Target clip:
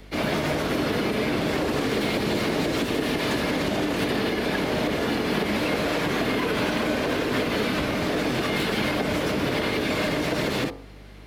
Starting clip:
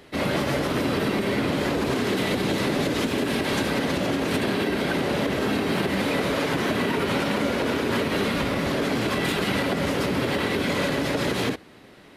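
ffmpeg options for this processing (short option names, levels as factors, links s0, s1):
-filter_complex "[0:a]asetrate=47628,aresample=44100,bandreject=f=45.72:t=h:w=4,bandreject=f=91.44:t=h:w=4,bandreject=f=137.16:t=h:w=4,bandreject=f=182.88:t=h:w=4,bandreject=f=228.6:t=h:w=4,bandreject=f=274.32:t=h:w=4,bandreject=f=320.04:t=h:w=4,bandreject=f=365.76:t=h:w=4,bandreject=f=411.48:t=h:w=4,bandreject=f=457.2:t=h:w=4,bandreject=f=502.92:t=h:w=4,bandreject=f=548.64:t=h:w=4,bandreject=f=594.36:t=h:w=4,bandreject=f=640.08:t=h:w=4,bandreject=f=685.8:t=h:w=4,bandreject=f=731.52:t=h:w=4,bandreject=f=777.24:t=h:w=4,bandreject=f=822.96:t=h:w=4,bandreject=f=868.68:t=h:w=4,bandreject=f=914.4:t=h:w=4,bandreject=f=960.12:t=h:w=4,bandreject=f=1005.84:t=h:w=4,bandreject=f=1051.56:t=h:w=4,bandreject=f=1097.28:t=h:w=4,bandreject=f=1143:t=h:w=4,bandreject=f=1188.72:t=h:w=4,bandreject=f=1234.44:t=h:w=4,bandreject=f=1280.16:t=h:w=4,bandreject=f=1325.88:t=h:w=4,bandreject=f=1371.6:t=h:w=4,aeval=exprs='val(0)+0.00631*(sin(2*PI*50*n/s)+sin(2*PI*2*50*n/s)/2+sin(2*PI*3*50*n/s)/3+sin(2*PI*4*50*n/s)/4+sin(2*PI*5*50*n/s)/5)':c=same,acrossover=split=190|830|4500[s0][s1][s2][s3];[s3]asoftclip=type=tanh:threshold=0.0141[s4];[s0][s1][s2][s4]amix=inputs=4:normalize=0"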